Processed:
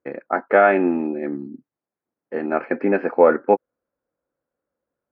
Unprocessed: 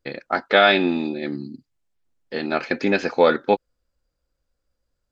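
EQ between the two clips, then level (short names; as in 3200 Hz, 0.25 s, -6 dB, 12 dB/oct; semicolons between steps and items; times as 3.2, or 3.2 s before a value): running mean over 12 samples; HPF 250 Hz 12 dB/oct; air absorption 480 m; +4.5 dB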